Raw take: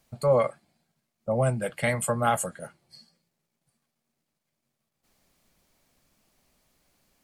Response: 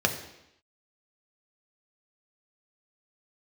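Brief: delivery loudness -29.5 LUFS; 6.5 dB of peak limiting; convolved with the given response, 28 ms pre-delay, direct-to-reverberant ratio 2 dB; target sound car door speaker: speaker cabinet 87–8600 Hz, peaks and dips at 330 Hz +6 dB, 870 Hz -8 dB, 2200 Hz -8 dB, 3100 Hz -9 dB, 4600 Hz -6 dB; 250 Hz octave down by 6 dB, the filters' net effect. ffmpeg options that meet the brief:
-filter_complex "[0:a]equalizer=f=250:t=o:g=-9,alimiter=limit=-18.5dB:level=0:latency=1,asplit=2[a][b];[1:a]atrim=start_sample=2205,adelay=28[c];[b][c]afir=irnorm=-1:irlink=0,volume=-14dB[d];[a][d]amix=inputs=2:normalize=0,highpass=87,equalizer=f=330:t=q:w=4:g=6,equalizer=f=870:t=q:w=4:g=-8,equalizer=f=2.2k:t=q:w=4:g=-8,equalizer=f=3.1k:t=q:w=4:g=-9,equalizer=f=4.6k:t=q:w=4:g=-6,lowpass=f=8.6k:w=0.5412,lowpass=f=8.6k:w=1.3066,volume=-1.5dB"

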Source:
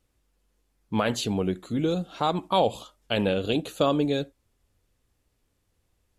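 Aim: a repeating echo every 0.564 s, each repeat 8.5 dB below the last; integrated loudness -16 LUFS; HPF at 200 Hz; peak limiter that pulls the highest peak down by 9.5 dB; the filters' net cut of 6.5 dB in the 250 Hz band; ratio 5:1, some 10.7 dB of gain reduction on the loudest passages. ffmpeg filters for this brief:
-af "highpass=200,equalizer=f=250:t=o:g=-6.5,acompressor=threshold=-30dB:ratio=5,alimiter=level_in=1dB:limit=-24dB:level=0:latency=1,volume=-1dB,aecho=1:1:564|1128|1692|2256:0.376|0.143|0.0543|0.0206,volume=21.5dB"

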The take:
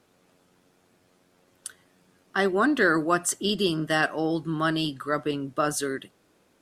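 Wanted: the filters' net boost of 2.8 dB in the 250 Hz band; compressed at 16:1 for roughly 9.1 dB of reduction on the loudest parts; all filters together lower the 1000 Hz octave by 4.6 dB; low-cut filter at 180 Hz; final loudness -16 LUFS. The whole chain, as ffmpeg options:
-af "highpass=180,equalizer=f=250:t=o:g=5.5,equalizer=f=1k:t=o:g=-7,acompressor=threshold=-25dB:ratio=16,volume=14.5dB"

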